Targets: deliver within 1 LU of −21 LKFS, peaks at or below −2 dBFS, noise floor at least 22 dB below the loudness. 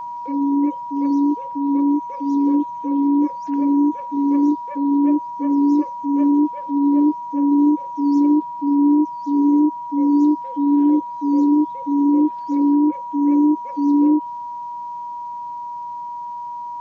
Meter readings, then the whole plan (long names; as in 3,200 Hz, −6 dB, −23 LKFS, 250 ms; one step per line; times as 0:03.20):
interfering tone 960 Hz; level of the tone −27 dBFS; integrated loudness −18.5 LKFS; sample peak −8.5 dBFS; target loudness −21.0 LKFS
→ notch filter 960 Hz, Q 30
level −2.5 dB